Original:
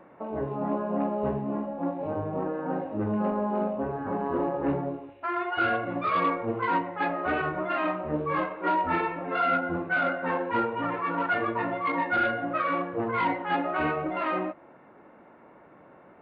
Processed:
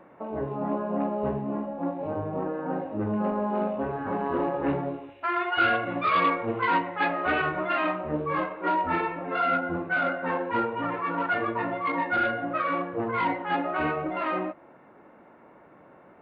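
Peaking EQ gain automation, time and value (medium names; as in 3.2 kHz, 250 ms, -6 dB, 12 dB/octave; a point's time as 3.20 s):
peaking EQ 3.3 kHz 2.4 oct
3.23 s +0.5 dB
3.76 s +7 dB
7.57 s +7 dB
8.30 s 0 dB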